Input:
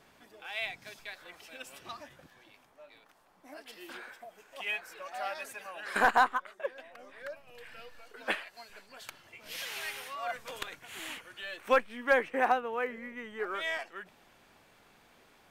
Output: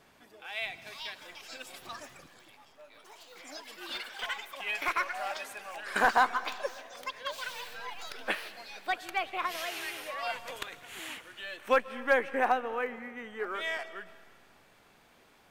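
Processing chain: algorithmic reverb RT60 1.8 s, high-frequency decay 0.85×, pre-delay 100 ms, DRR 16 dB; ever faster or slower copies 606 ms, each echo +6 st, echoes 3, each echo -6 dB

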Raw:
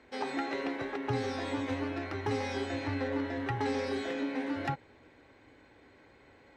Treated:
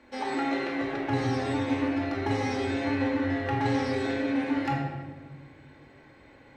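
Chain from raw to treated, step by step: simulated room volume 1100 m³, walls mixed, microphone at 2.4 m

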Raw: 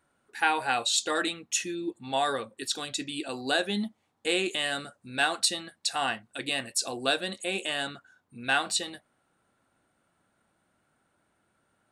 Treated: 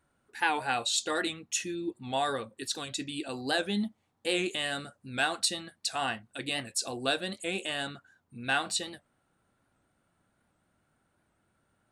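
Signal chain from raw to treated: bass shelf 150 Hz +9.5 dB; warped record 78 rpm, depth 100 cents; trim -3 dB

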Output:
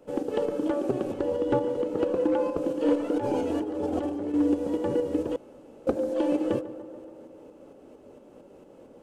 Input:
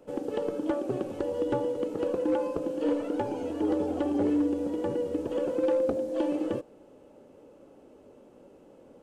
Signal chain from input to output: 1.12–2.57 s: treble shelf 6.1 kHz -7 dB; 3.16–4.34 s: compressor with a negative ratio -32 dBFS, ratio -1; tremolo saw up 4.4 Hz, depth 45%; tape echo 143 ms, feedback 81%, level -13.5 dB, low-pass 1.8 kHz; 5.36–5.87 s: room tone; trim +5 dB

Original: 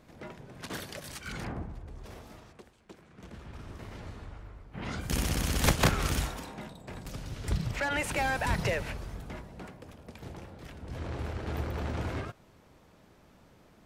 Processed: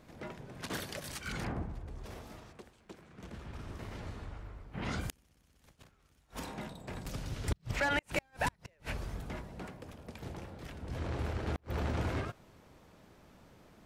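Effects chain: inverted gate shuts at -21 dBFS, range -39 dB

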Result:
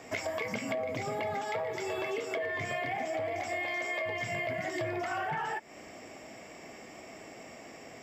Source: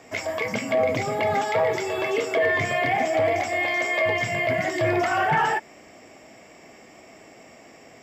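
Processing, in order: compression 12:1, threshold -31 dBFS, peak gain reduction 14 dB

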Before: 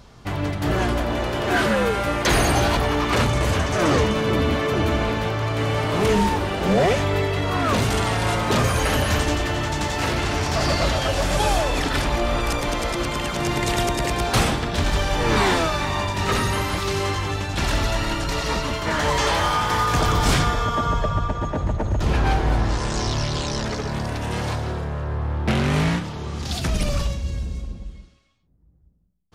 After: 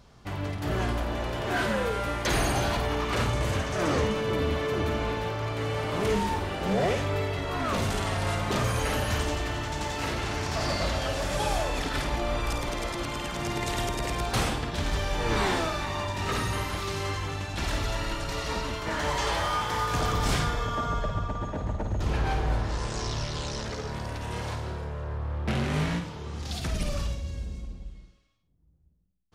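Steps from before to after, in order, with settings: 7.37–8.59 s: frequency shift -14 Hz; on a send: flutter echo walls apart 9 m, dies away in 0.39 s; on the sum: trim -8 dB

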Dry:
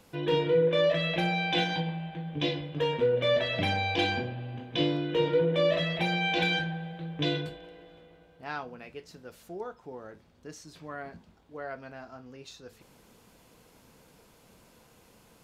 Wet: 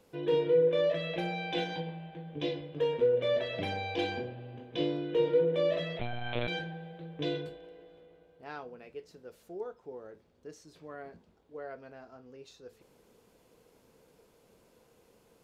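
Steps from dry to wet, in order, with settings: peaking EQ 440 Hz +9 dB 0.92 oct; 5.99–6.48 s: monotone LPC vocoder at 8 kHz 120 Hz; trim -8.5 dB

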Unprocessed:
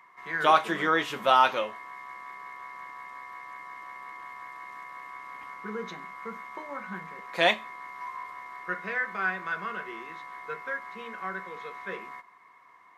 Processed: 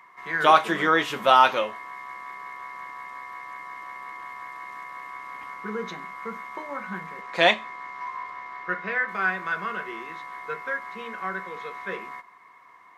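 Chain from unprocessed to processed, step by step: 7.21–9.07 s: low-pass 8.7 kHz -> 4.5 kHz 12 dB/octave; trim +4 dB

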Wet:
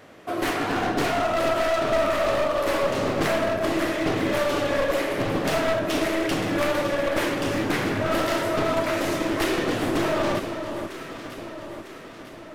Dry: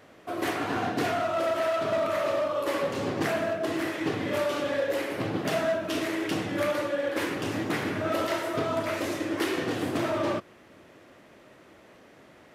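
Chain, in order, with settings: one-sided wavefolder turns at -26 dBFS; echo whose repeats swap between lows and highs 475 ms, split 1.2 kHz, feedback 71%, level -7.5 dB; trim +5 dB

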